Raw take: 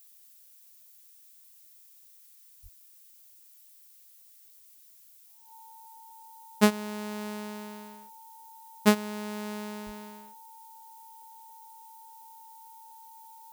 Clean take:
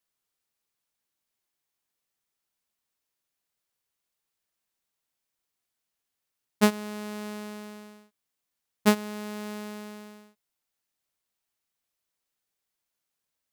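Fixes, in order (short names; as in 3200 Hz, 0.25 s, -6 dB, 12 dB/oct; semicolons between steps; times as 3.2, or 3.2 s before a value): notch 900 Hz, Q 30; 2.62–2.74 HPF 140 Hz 24 dB/oct; 9.85–9.97 HPF 140 Hz 24 dB/oct; noise print and reduce 28 dB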